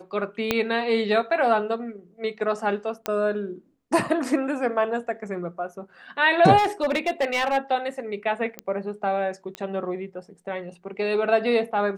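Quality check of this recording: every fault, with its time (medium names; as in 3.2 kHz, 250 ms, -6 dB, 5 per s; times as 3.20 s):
0.51 s: pop -6 dBFS
3.06 s: pop -10 dBFS
6.57–7.58 s: clipped -18.5 dBFS
8.59 s: pop -15 dBFS
9.55 s: pop -18 dBFS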